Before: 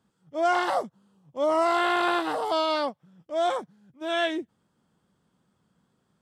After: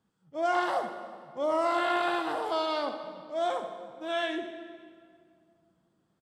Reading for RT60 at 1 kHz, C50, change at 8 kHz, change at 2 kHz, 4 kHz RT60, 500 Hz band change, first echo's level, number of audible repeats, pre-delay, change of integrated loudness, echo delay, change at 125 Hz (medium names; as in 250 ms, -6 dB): 2.0 s, 6.5 dB, -6.0 dB, -4.0 dB, 1.6 s, -3.5 dB, -11.5 dB, 1, 6 ms, -4.5 dB, 70 ms, no reading